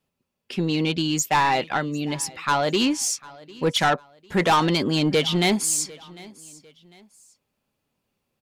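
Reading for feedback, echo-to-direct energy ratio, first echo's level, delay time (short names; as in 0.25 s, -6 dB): 35%, -21.5 dB, -22.0 dB, 0.75 s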